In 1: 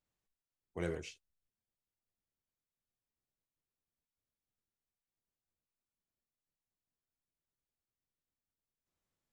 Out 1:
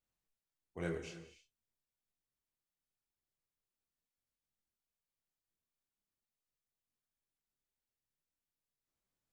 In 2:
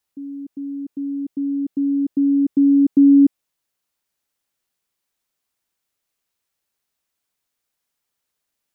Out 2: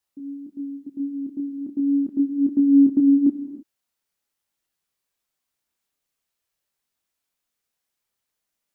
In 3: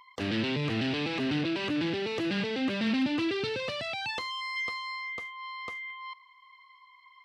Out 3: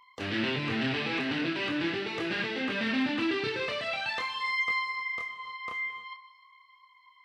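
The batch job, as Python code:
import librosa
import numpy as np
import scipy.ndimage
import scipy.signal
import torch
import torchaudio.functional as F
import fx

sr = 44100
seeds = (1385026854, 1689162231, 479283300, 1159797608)

y = fx.chorus_voices(x, sr, voices=2, hz=0.43, base_ms=26, depth_ms=5.0, mix_pct=40)
y = fx.dynamic_eq(y, sr, hz=1600.0, q=0.81, threshold_db=-46.0, ratio=4.0, max_db=8)
y = fx.rev_gated(y, sr, seeds[0], gate_ms=340, shape='flat', drr_db=9.5)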